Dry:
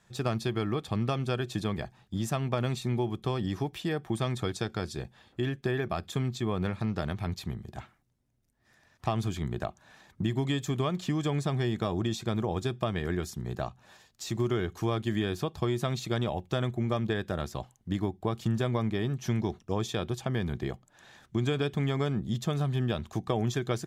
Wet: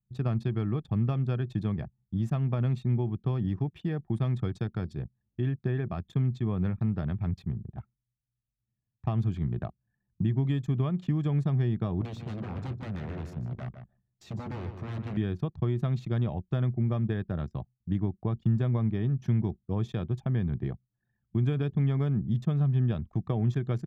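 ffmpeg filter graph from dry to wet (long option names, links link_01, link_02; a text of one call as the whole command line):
ffmpeg -i in.wav -filter_complex "[0:a]asettb=1/sr,asplit=3[link_01][link_02][link_03];[link_01]atrim=end=12.014[link_04];[link_02]atrim=start=12.01:end=15.17,asetpts=PTS-STARTPTS,afade=type=in:duration=0.004:curve=qsin,afade=type=out:start_time=3.156:duration=0.004:curve=qsin,aeval=exprs='0.0316*(abs(mod(val(0)/0.0316+3,4)-2)-1)':channel_layout=same,aecho=1:1:152|304|456|608:0.422|0.122|0.0355|0.0103,atrim=end_sample=139356[link_05];[link_03]atrim=start=15.166[link_06];[link_04][link_05]acrossfade=duration=0.004:curve1=hsin:curve2=qsin[link_07];[link_07][link_06]acrossfade=duration=0.004:curve1=qsin:curve2=hsin,highpass=92,anlmdn=0.158,bass=frequency=250:gain=14,treble=frequency=4000:gain=-14,volume=-7dB" out.wav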